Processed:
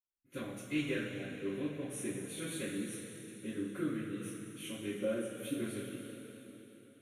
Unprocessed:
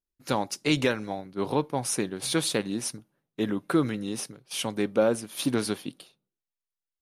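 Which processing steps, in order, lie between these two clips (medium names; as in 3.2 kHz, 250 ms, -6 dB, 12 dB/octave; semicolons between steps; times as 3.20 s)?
static phaser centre 2.1 kHz, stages 4; reverberation RT60 3.8 s, pre-delay 46 ms, DRR -60 dB; trim -5.5 dB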